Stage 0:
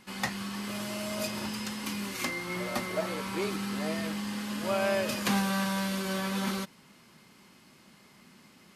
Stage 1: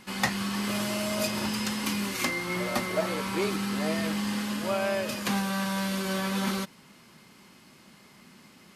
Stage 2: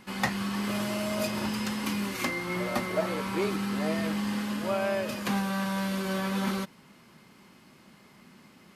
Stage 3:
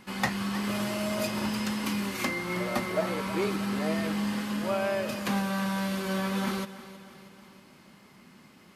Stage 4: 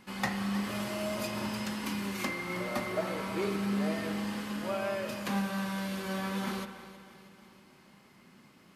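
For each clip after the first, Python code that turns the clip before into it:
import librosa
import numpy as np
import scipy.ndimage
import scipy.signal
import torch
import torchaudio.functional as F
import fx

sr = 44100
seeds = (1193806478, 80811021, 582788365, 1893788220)

y1 = fx.rider(x, sr, range_db=10, speed_s=0.5)
y1 = y1 * 10.0 ** (3.0 / 20.0)
y2 = fx.peak_eq(y1, sr, hz=7500.0, db=-5.5, octaves=2.7)
y3 = fx.echo_feedback(y2, sr, ms=318, feedback_pct=55, wet_db=-15.5)
y4 = fx.rev_spring(y3, sr, rt60_s=1.4, pass_ms=(35,), chirp_ms=70, drr_db=7.5)
y4 = y4 * 10.0 ** (-4.5 / 20.0)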